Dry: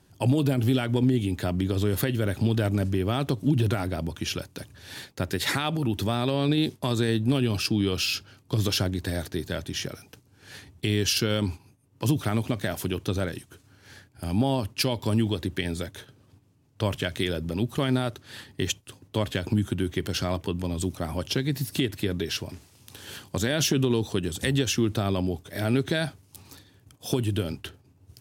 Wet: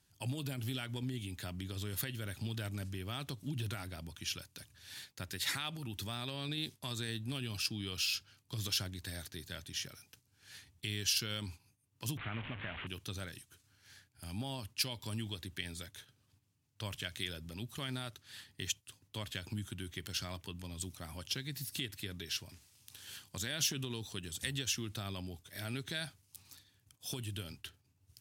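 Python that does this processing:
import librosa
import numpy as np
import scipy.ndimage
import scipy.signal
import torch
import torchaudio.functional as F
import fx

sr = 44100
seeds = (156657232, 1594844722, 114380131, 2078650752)

y = fx.delta_mod(x, sr, bps=16000, step_db=-25.5, at=(12.17, 12.87))
y = fx.tone_stack(y, sr, knobs='5-5-5')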